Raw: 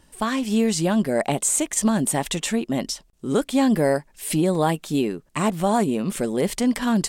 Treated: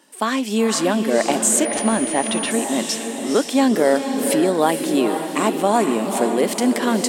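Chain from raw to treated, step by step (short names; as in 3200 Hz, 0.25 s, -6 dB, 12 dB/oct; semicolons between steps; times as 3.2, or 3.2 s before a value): HPF 240 Hz 24 dB/oct; diffused feedback echo 0.492 s, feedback 46%, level -6 dB; 1.65–2.51 pulse-width modulation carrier 9600 Hz; gain +4 dB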